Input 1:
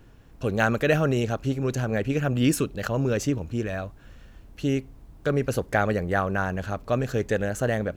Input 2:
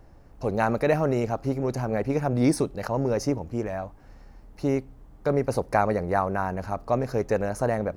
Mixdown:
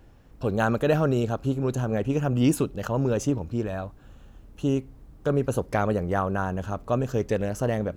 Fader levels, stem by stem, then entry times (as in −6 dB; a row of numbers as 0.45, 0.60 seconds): −4.0, −5.5 decibels; 0.00, 0.00 seconds